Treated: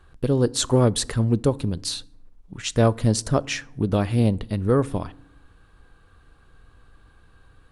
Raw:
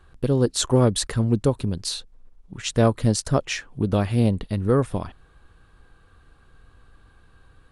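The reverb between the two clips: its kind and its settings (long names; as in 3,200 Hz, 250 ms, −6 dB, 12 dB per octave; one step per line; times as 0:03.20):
feedback delay network reverb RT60 0.73 s, low-frequency decay 1.5×, high-frequency decay 0.6×, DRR 20 dB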